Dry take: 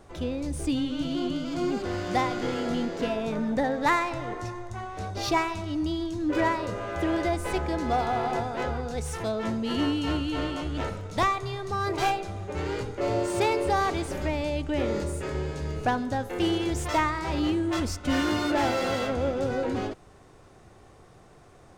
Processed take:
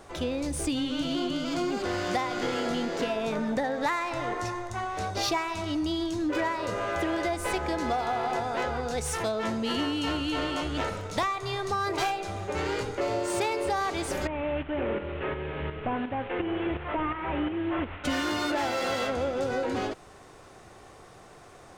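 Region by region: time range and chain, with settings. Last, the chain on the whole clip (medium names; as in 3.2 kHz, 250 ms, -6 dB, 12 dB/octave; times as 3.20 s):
14.27–18.04 s: one-bit delta coder 16 kbps, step -38 dBFS + tremolo saw up 2.8 Hz, depth 60%
whole clip: bass shelf 330 Hz -9 dB; compression, threshold -32 dBFS; trim +6.5 dB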